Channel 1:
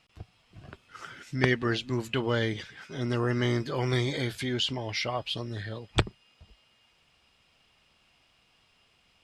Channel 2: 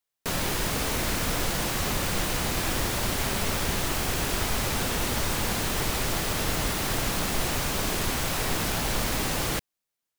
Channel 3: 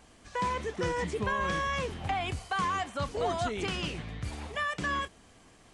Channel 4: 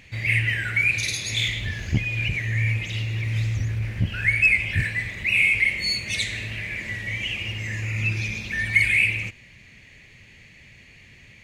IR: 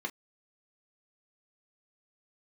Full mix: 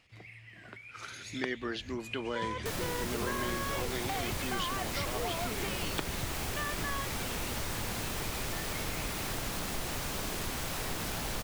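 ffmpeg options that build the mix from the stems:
-filter_complex "[0:a]highpass=f=200:w=0.5412,highpass=f=200:w=1.3066,volume=0.794[s0];[1:a]adelay=2400,volume=0.668[s1];[2:a]adelay=2000,volume=1[s2];[3:a]acompressor=threshold=0.0316:ratio=6,volume=0.282,afade=t=in:st=0.83:d=0.59:silence=0.375837[s3];[s0][s1][s2][s3]amix=inputs=4:normalize=0,acompressor=threshold=0.0158:ratio=2"

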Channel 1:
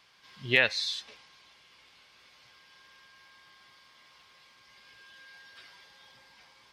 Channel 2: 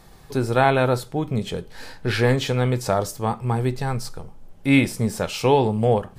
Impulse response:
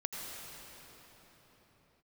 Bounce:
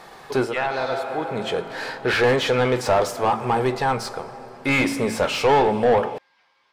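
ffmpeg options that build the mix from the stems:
-filter_complex "[0:a]volume=0.15,asplit=2[s0][s1];[1:a]lowshelf=f=240:g=-9,bandreject=f=55.24:t=h:w=4,bandreject=f=110.48:t=h:w=4,bandreject=f=165.72:t=h:w=4,bandreject=f=220.96:t=h:w=4,bandreject=f=276.2:t=h:w=4,bandreject=f=331.44:t=h:w=4,volume=0.794,asplit=2[s2][s3];[s3]volume=0.126[s4];[s1]apad=whole_len=272641[s5];[s2][s5]sidechaincompress=threshold=0.00126:ratio=8:attack=9.5:release=581[s6];[2:a]atrim=start_sample=2205[s7];[s4][s7]afir=irnorm=-1:irlink=0[s8];[s0][s6][s8]amix=inputs=3:normalize=0,asplit=2[s9][s10];[s10]highpass=f=720:p=1,volume=14.1,asoftclip=type=tanh:threshold=0.398[s11];[s9][s11]amix=inputs=2:normalize=0,lowpass=f=1400:p=1,volume=0.501"

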